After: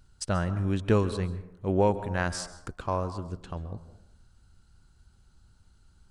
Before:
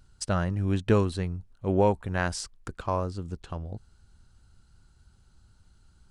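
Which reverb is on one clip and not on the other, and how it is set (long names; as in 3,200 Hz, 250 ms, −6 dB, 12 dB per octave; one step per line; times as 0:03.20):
dense smooth reverb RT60 0.79 s, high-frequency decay 0.4×, pre-delay 120 ms, DRR 13 dB
level −1 dB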